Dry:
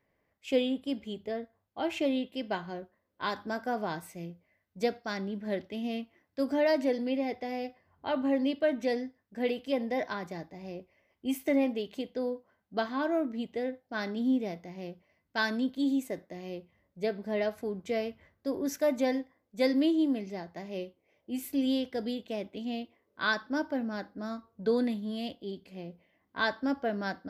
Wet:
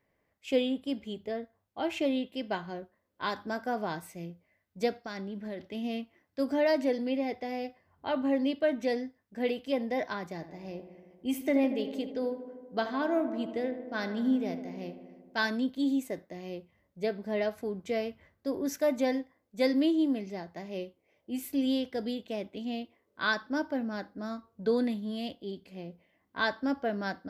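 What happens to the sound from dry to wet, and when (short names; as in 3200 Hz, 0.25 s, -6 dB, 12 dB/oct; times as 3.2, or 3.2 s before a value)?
4.99–5.75 compressor, threshold -34 dBFS
10.33–15.47 darkening echo 78 ms, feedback 77%, low-pass 2400 Hz, level -11 dB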